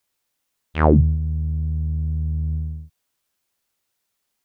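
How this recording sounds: noise floor -76 dBFS; spectral tilt -7.5 dB/octave

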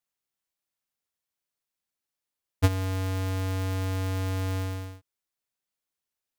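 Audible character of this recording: noise floor -88 dBFS; spectral tilt -6.5 dB/octave

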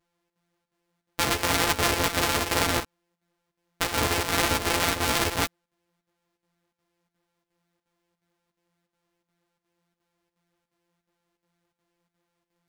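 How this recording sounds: a buzz of ramps at a fixed pitch in blocks of 256 samples; chopped level 2.8 Hz, depth 65%, duty 80%; a shimmering, thickened sound

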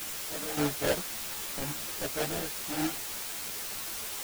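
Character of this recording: aliases and images of a low sample rate 1.1 kHz, jitter 20%; random-step tremolo, depth 95%; a quantiser's noise floor 6-bit, dither triangular; a shimmering, thickened sound

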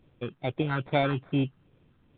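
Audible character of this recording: a quantiser's noise floor 12-bit, dither none; phasing stages 6, 2.4 Hz, lowest notch 590–2400 Hz; aliases and images of a low sample rate 2.9 kHz, jitter 0%; µ-law

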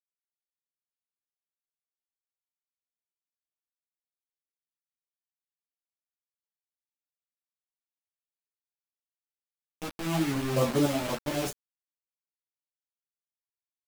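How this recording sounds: random-step tremolo; a quantiser's noise floor 6-bit, dither none; a shimmering, thickened sound

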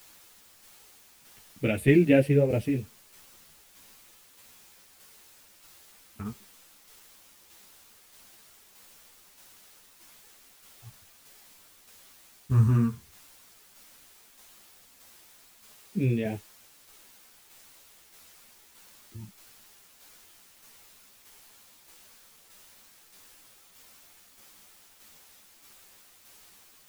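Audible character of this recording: phasing stages 4, 0.077 Hz, lowest notch 300–1200 Hz; a quantiser's noise floor 10-bit, dither triangular; tremolo saw down 1.6 Hz, depth 40%; a shimmering, thickened sound

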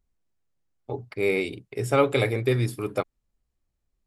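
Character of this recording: noise floor -80 dBFS; spectral tilt -5.5 dB/octave

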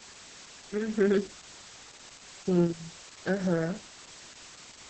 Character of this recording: tremolo saw up 0.75 Hz, depth 45%; a quantiser's noise floor 8-bit, dither triangular; Opus

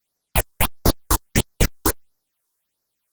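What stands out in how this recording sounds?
phasing stages 6, 1.5 Hz, lowest notch 150–3000 Hz; Opus

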